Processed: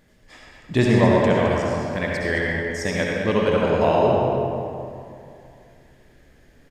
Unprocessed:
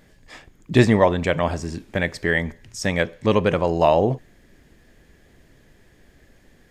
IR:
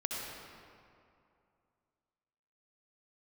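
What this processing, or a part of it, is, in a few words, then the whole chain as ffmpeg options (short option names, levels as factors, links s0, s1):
cave: -filter_complex "[0:a]aecho=1:1:213:0.299[s0];[1:a]atrim=start_sample=2205[s1];[s0][s1]afir=irnorm=-1:irlink=0,volume=0.668"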